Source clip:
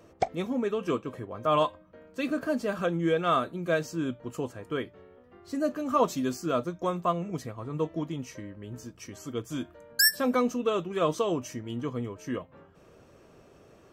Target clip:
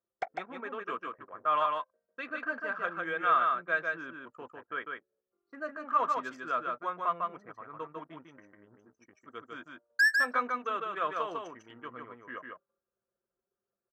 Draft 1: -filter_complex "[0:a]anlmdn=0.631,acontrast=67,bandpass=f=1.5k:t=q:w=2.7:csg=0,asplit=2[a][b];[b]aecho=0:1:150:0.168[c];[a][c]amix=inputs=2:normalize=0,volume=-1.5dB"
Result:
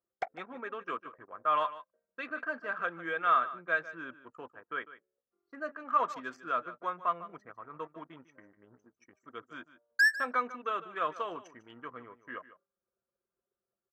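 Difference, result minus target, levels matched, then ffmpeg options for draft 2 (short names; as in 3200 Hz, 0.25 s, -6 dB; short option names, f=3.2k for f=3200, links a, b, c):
echo-to-direct -12 dB
-filter_complex "[0:a]anlmdn=0.631,acontrast=67,bandpass=f=1.5k:t=q:w=2.7:csg=0,asplit=2[a][b];[b]aecho=0:1:150:0.668[c];[a][c]amix=inputs=2:normalize=0,volume=-1.5dB"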